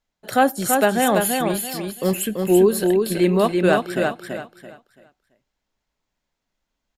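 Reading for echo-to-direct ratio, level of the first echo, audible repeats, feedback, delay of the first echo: -3.5 dB, -4.0 dB, 3, 28%, 335 ms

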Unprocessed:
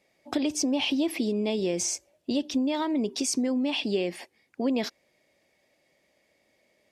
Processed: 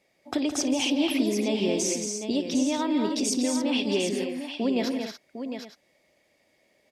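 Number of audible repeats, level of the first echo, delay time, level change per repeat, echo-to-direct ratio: 6, -19.5 dB, 55 ms, no regular repeats, -2.0 dB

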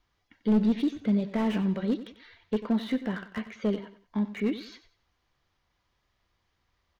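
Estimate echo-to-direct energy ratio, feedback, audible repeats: -13.5 dB, 31%, 3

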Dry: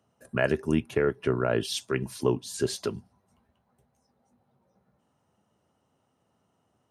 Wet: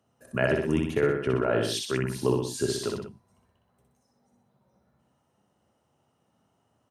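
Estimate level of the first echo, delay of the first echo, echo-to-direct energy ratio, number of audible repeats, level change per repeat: -3.0 dB, 62 ms, -1.5 dB, 3, -5.0 dB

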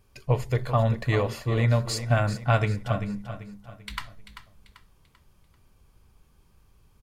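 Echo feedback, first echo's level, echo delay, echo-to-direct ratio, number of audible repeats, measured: 39%, -11.5 dB, 390 ms, -11.0 dB, 3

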